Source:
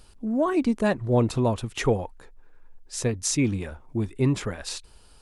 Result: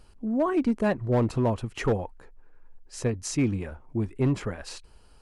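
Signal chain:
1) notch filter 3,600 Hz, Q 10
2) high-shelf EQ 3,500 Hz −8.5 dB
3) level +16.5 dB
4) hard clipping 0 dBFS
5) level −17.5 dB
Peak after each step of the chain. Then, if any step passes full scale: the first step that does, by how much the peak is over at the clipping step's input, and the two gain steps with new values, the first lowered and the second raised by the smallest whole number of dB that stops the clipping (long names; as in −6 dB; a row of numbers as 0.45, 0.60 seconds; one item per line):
−10.0, −10.0, +6.5, 0.0, −17.5 dBFS
step 3, 6.5 dB
step 3 +9.5 dB, step 5 −10.5 dB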